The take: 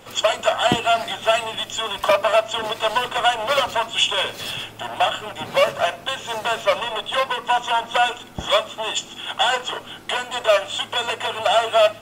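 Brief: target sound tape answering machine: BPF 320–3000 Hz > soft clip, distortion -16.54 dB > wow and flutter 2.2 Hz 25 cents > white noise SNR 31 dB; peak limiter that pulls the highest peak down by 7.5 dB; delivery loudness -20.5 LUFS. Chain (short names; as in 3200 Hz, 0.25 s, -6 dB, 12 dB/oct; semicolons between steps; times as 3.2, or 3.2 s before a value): limiter -12 dBFS; BPF 320–3000 Hz; soft clip -17 dBFS; wow and flutter 2.2 Hz 25 cents; white noise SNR 31 dB; gain +6 dB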